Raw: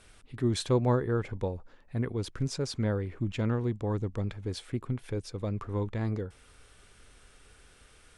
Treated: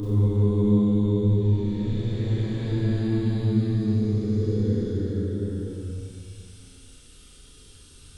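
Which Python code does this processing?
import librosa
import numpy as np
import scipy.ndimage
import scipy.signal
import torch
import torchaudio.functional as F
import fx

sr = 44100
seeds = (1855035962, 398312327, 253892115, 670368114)

y = fx.paulstretch(x, sr, seeds[0], factor=9.9, window_s=0.25, from_s=5.72)
y = fx.band_shelf(y, sr, hz=1100.0, db=-13.5, octaves=2.5)
y = fx.rev_schroeder(y, sr, rt60_s=1.5, comb_ms=30, drr_db=-5.5)
y = y * librosa.db_to_amplitude(4.0)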